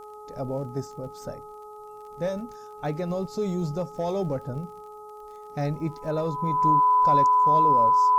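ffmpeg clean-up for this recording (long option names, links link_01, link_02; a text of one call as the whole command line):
ffmpeg -i in.wav -af "adeclick=threshold=4,bandreject=frequency=422:width_type=h:width=4,bandreject=frequency=844:width_type=h:width=4,bandreject=frequency=1266:width_type=h:width=4,bandreject=frequency=1000:width=30,agate=range=-21dB:threshold=-35dB" out.wav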